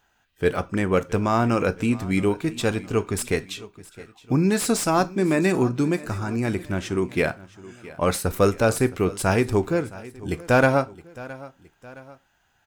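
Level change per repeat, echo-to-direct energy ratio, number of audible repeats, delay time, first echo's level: −6.0 dB, −18.0 dB, 2, 667 ms, −19.0 dB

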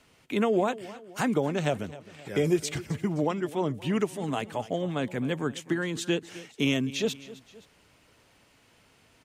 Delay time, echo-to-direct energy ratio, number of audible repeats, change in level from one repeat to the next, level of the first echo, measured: 261 ms, −16.5 dB, 2, −6.0 dB, −17.5 dB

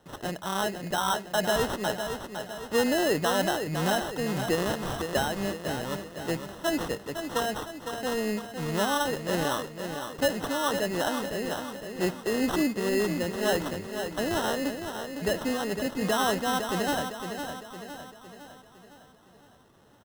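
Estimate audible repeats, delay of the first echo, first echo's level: 5, 508 ms, −7.5 dB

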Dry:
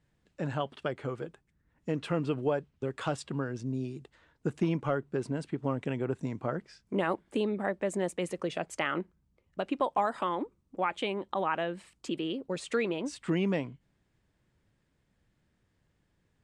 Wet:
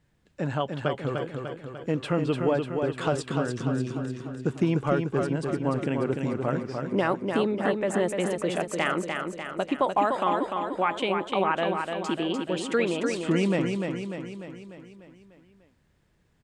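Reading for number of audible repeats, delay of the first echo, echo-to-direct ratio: 6, 297 ms, −3.5 dB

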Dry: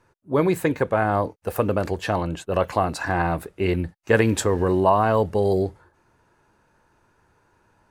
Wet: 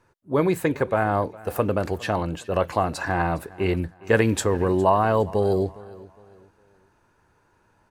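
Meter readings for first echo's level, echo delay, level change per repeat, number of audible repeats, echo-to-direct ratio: −21.0 dB, 410 ms, −9.5 dB, 2, −20.5 dB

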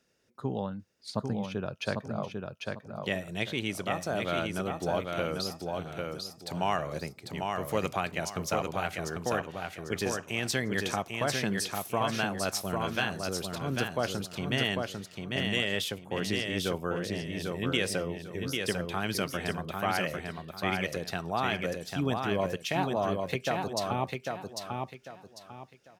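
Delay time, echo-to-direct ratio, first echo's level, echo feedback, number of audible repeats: 797 ms, −3.5 dB, −4.0 dB, 29%, 3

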